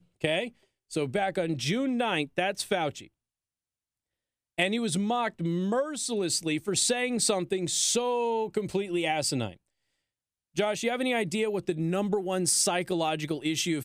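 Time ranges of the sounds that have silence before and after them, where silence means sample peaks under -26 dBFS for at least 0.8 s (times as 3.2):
4.59–9.47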